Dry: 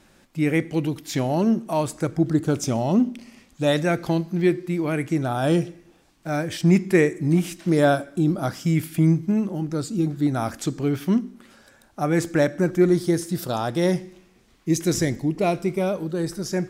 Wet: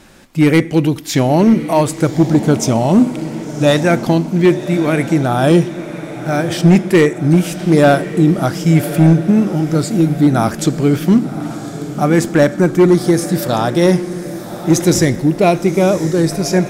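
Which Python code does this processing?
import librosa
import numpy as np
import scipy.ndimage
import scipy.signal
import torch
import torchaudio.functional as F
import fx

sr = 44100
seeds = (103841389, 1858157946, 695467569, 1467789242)

p1 = fx.rider(x, sr, range_db=5, speed_s=2.0)
p2 = x + F.gain(torch.from_numpy(p1), 2.5).numpy()
p3 = np.clip(10.0 ** (6.0 / 20.0) * p2, -1.0, 1.0) / 10.0 ** (6.0 / 20.0)
p4 = fx.echo_diffused(p3, sr, ms=1094, feedback_pct=51, wet_db=-12)
y = F.gain(torch.from_numpy(p4), 2.0).numpy()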